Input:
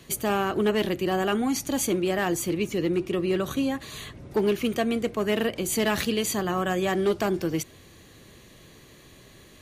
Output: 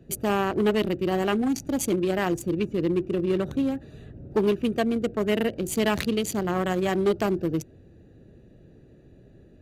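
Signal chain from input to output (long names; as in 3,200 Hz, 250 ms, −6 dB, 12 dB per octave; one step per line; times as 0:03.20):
adaptive Wiener filter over 41 samples
level +2 dB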